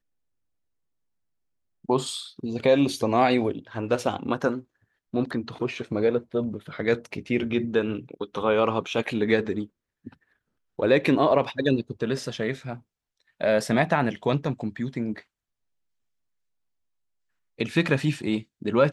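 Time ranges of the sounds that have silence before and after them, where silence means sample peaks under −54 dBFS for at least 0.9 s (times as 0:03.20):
0:01.84–0:15.23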